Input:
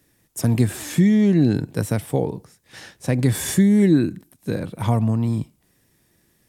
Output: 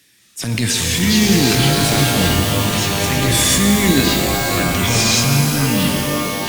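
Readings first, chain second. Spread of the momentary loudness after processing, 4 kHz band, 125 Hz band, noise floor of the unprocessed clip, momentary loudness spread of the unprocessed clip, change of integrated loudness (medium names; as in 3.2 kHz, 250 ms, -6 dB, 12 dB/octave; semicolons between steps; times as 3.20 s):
4 LU, +21.5 dB, +3.5 dB, -64 dBFS, 13 LU, +5.5 dB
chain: ever faster or slower copies 180 ms, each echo -6 st, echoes 3; frequency weighting D; transient shaper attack -11 dB, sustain +4 dB; peaking EQ 540 Hz -6.5 dB 2.4 oct; pitch-shifted reverb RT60 3.6 s, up +12 st, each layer -2 dB, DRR 4 dB; trim +5 dB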